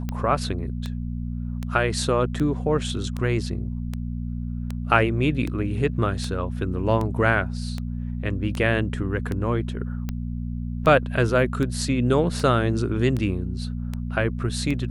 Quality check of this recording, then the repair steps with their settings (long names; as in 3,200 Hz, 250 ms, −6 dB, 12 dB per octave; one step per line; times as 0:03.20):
mains hum 60 Hz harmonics 4 −29 dBFS
scratch tick 78 rpm −16 dBFS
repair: click removal
hum removal 60 Hz, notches 4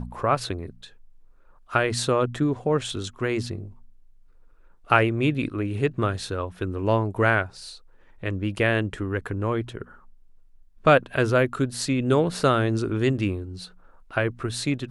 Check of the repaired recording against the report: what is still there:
none of them is left